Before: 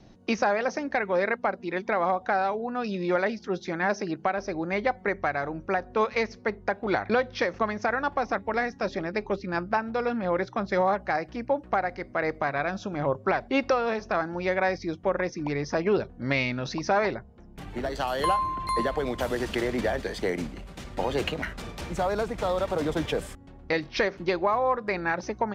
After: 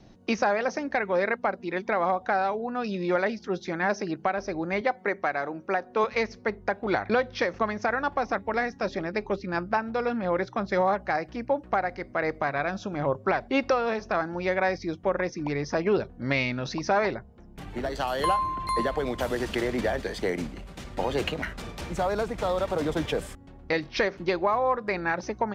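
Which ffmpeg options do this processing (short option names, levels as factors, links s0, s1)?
-filter_complex "[0:a]asettb=1/sr,asplit=3[s0][s1][s2];[s0]atrim=end=4.814[s3];[s1]atrim=start=4.81:end=6.04,asetpts=PTS-STARTPTS,afade=t=in:d=0.004:c=qsin,afade=t=out:st=1.226:d=0.004:c=qsin,highpass=210[s4];[s2]atrim=start=6.036[s5];[s3][s4]acrossfade=d=0.004:c1=hsin:c2=qsin[s6];[s6][s5]acrossfade=d=0.004:c1=qsin:c2=hsin"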